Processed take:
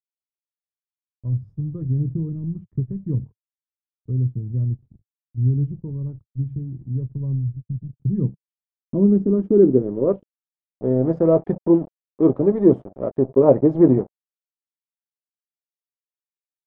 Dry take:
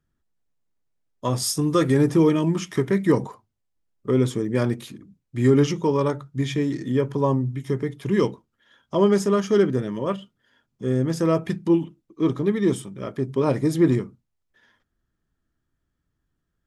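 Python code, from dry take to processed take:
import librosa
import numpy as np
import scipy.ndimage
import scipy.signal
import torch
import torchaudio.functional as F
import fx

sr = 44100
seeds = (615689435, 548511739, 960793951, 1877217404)

y = fx.hpss(x, sr, part='harmonic', gain_db=-5)
y = fx.cheby1_bandstop(y, sr, low_hz=220.0, high_hz=8200.0, order=3, at=(7.47, 7.91), fade=0.02)
y = np.sign(y) * np.maximum(np.abs(y) - 10.0 ** (-40.0 / 20.0), 0.0)
y = fx.filter_sweep_lowpass(y, sr, from_hz=110.0, to_hz=620.0, start_s=7.71, end_s=10.56, q=2.1)
y = y * librosa.db_to_amplitude(6.5)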